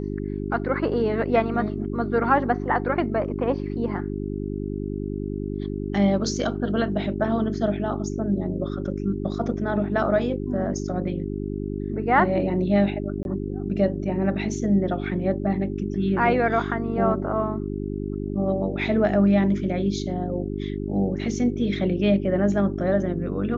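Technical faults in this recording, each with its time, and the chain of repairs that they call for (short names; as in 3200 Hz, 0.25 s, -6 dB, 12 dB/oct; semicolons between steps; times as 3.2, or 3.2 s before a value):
hum 50 Hz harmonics 8 -29 dBFS
13.23–13.25 gap 21 ms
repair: de-hum 50 Hz, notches 8; interpolate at 13.23, 21 ms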